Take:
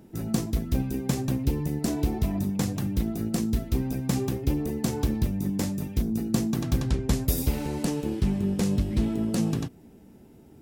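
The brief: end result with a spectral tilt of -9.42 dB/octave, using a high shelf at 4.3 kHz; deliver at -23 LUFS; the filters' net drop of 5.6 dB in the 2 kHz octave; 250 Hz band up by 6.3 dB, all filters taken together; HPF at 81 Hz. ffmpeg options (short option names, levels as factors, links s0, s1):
-af "highpass=81,equalizer=f=250:t=o:g=8,equalizer=f=2000:t=o:g=-6,highshelf=f=4300:g=-6,volume=1.06"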